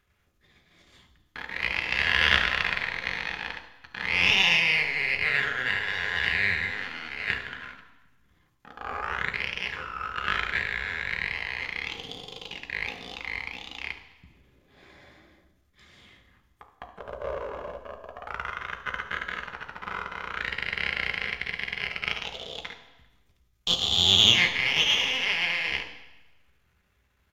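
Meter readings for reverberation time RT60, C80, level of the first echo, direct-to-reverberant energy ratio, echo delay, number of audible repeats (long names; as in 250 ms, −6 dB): 1.0 s, 12.0 dB, −15.0 dB, 3.5 dB, 71 ms, 1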